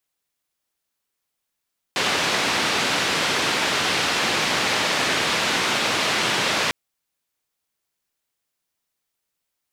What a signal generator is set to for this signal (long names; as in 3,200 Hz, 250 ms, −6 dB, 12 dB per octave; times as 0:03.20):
band-limited noise 140–3,600 Hz, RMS −22 dBFS 4.75 s